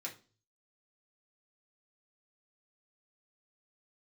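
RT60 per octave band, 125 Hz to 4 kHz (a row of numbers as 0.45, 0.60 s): 0.75, 0.45, 0.40, 0.35, 0.30, 0.35 s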